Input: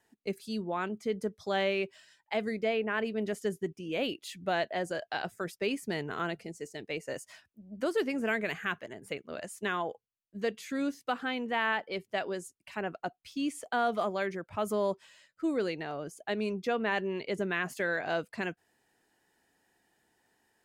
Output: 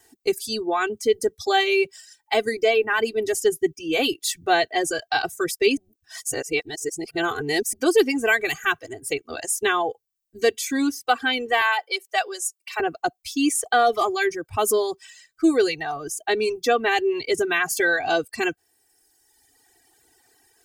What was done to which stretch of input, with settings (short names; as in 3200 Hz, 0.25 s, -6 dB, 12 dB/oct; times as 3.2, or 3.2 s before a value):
5.77–7.73 reverse
11.61–12.8 HPF 530 Hz 24 dB/oct
whole clip: comb 2.6 ms, depth 98%; reverb removal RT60 1.5 s; tone controls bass +2 dB, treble +11 dB; gain +8 dB